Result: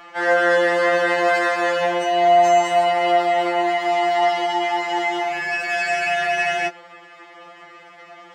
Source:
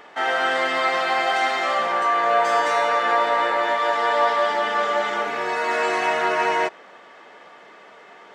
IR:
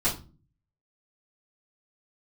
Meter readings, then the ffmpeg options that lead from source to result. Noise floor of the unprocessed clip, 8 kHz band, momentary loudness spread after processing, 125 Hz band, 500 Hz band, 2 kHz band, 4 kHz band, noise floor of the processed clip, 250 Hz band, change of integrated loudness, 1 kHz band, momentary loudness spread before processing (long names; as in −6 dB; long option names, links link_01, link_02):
−47 dBFS, +3.5 dB, 6 LU, can't be measured, +4.5 dB, +2.0 dB, +1.0 dB, −45 dBFS, +7.0 dB, +2.0 dB, +1.0 dB, 4 LU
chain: -af "afftfilt=real='re*2.83*eq(mod(b,8),0)':imag='im*2.83*eq(mod(b,8),0)':win_size=2048:overlap=0.75,volume=5dB"